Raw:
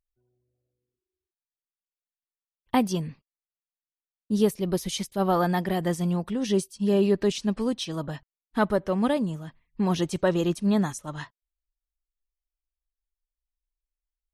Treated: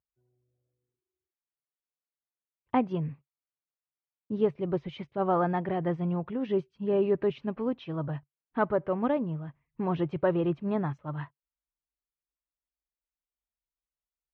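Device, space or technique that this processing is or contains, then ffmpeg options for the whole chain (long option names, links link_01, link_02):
bass cabinet: -af "highpass=73,equalizer=frequency=140:width_type=q:width=4:gain=8,equalizer=frequency=200:width_type=q:width=4:gain=-8,equalizer=frequency=1800:width_type=q:width=4:gain=-5,lowpass=frequency=2300:width=0.5412,lowpass=frequency=2300:width=1.3066,volume=-2dB"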